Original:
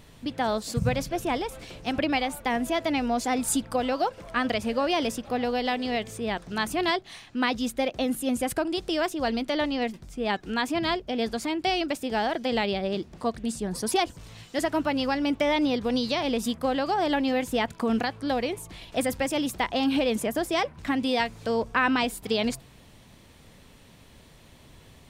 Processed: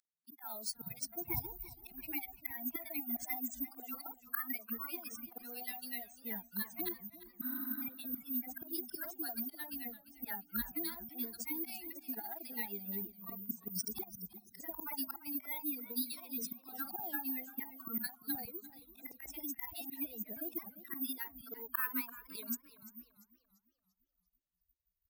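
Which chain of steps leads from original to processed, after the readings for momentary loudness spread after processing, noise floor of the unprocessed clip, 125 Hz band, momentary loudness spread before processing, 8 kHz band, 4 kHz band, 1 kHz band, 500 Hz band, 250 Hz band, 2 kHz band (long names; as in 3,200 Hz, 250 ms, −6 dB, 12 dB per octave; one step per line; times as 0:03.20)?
8 LU, −53 dBFS, −18.5 dB, 6 LU, −11.0 dB, −19.5 dB, −22.0 dB, −26.5 dB, −18.0 dB, −16.5 dB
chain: spectral dynamics exaggerated over time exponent 3
volume swells 520 ms
high-pass filter 45 Hz
parametric band 3,400 Hz +14 dB 1.1 octaves
healed spectral selection 0:07.45–0:07.80, 240–10,000 Hz before
downward compressor 10 to 1, threshold −51 dBFS, peak gain reduction 24.5 dB
phaser with its sweep stopped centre 1,300 Hz, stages 4
three-band delay without the direct sound highs, mids, lows 50/520 ms, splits 160/930 Hz
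bad sample-rate conversion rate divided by 3×, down filtered, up zero stuff
feedback echo with a swinging delay time 343 ms, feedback 39%, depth 103 cents, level −15.5 dB
level +16 dB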